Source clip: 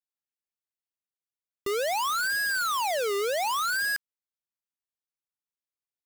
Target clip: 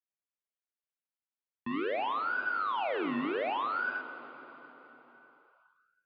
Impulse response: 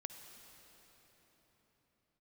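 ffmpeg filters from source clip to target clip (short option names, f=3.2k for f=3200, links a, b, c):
-filter_complex "[0:a]tremolo=f=100:d=0.519,asplit=2[a][b];[1:a]atrim=start_sample=2205,lowshelf=f=290:g=-11,adelay=48[c];[b][c]afir=irnorm=-1:irlink=0,volume=1dB[d];[a][d]amix=inputs=2:normalize=0,highpass=f=290:t=q:w=0.5412,highpass=f=290:t=q:w=1.307,lowpass=f=3.1k:t=q:w=0.5176,lowpass=f=3.1k:t=q:w=0.7071,lowpass=f=3.1k:t=q:w=1.932,afreqshift=-160,volume=-3.5dB"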